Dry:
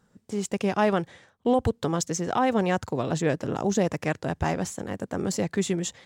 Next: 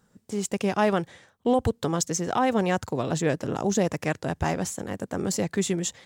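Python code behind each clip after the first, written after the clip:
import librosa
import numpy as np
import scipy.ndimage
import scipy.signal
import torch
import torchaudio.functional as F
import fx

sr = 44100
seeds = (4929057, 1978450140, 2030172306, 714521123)

y = fx.high_shelf(x, sr, hz=7200.0, db=6.5)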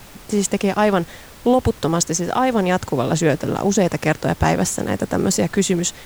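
y = fx.rider(x, sr, range_db=4, speed_s=0.5)
y = fx.dmg_noise_colour(y, sr, seeds[0], colour='pink', level_db=-49.0)
y = F.gain(torch.from_numpy(y), 7.5).numpy()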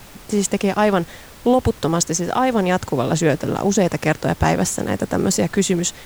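y = x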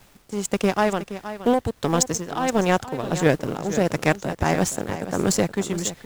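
y = fx.power_curve(x, sr, exponent=1.4)
y = y * (1.0 - 0.58 / 2.0 + 0.58 / 2.0 * np.cos(2.0 * np.pi * 1.5 * (np.arange(len(y)) / sr)))
y = y + 10.0 ** (-12.5 / 20.0) * np.pad(y, (int(471 * sr / 1000.0), 0))[:len(y)]
y = F.gain(torch.from_numpy(y), 2.0).numpy()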